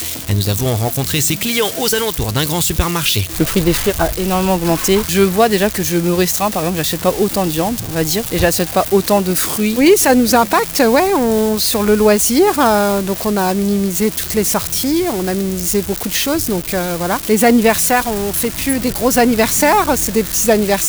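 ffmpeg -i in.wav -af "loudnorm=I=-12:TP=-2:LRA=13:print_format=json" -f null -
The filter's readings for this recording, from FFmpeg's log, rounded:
"input_i" : "-14.5",
"input_tp" : "-1.3",
"input_lra" : "3.3",
"input_thresh" : "-24.5",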